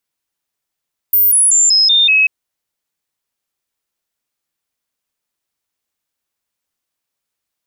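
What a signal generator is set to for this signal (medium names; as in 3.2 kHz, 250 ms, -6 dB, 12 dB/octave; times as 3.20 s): stepped sine 14.5 kHz down, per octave 2, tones 6, 0.19 s, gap 0.00 s -7.5 dBFS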